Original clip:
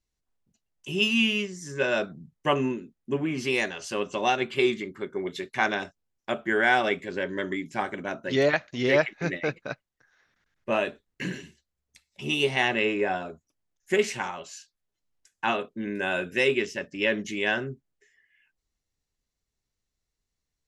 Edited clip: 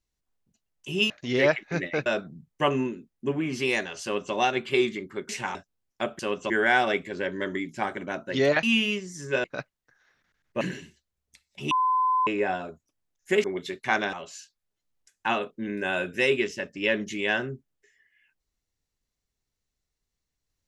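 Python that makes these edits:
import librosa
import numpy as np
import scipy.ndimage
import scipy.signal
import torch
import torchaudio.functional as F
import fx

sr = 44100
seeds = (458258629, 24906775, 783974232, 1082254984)

y = fx.edit(x, sr, fx.swap(start_s=1.1, length_s=0.81, other_s=8.6, other_length_s=0.96),
    fx.duplicate(start_s=3.88, length_s=0.31, to_s=6.47),
    fx.swap(start_s=5.14, length_s=0.69, other_s=14.05, other_length_s=0.26),
    fx.cut(start_s=10.73, length_s=0.49),
    fx.bleep(start_s=12.32, length_s=0.56, hz=1020.0, db=-20.0), tone=tone)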